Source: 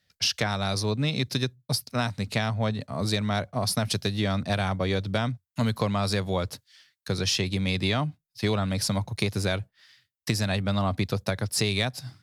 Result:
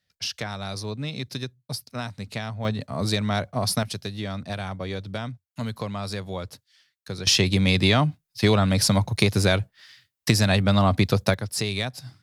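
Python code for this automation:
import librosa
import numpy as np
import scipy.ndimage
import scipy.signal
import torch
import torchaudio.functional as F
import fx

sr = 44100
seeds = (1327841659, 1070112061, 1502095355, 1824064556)

y = fx.gain(x, sr, db=fx.steps((0.0, -5.0), (2.65, 2.0), (3.83, -5.0), (7.27, 6.5), (11.34, -1.5)))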